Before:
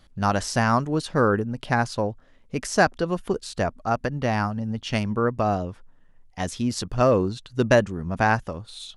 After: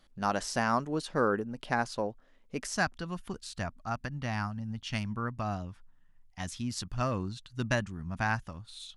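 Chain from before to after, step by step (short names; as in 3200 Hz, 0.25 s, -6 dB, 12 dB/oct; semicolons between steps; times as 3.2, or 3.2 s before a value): bell 82 Hz -13.5 dB 1.2 oct, from 2.74 s 460 Hz; gain -6.5 dB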